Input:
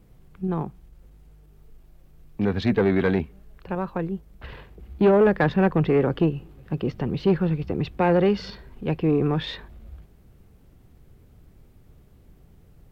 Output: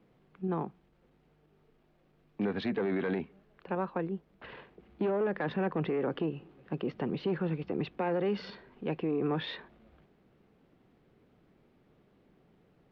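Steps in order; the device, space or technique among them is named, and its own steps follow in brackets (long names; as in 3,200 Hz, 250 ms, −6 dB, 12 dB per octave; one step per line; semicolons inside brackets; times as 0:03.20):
DJ mixer with the lows and highs turned down (three-way crossover with the lows and the highs turned down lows −22 dB, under 170 Hz, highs −21 dB, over 4,200 Hz; brickwall limiter −19.5 dBFS, peak gain reduction 11 dB)
level −3.5 dB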